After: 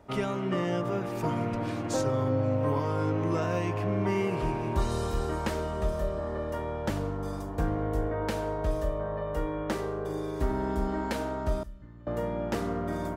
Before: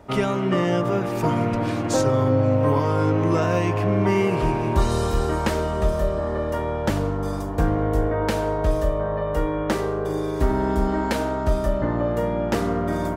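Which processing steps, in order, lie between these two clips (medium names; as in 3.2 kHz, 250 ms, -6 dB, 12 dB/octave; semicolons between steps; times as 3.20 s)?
11.63–12.07 s: amplifier tone stack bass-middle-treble 6-0-2; trim -8 dB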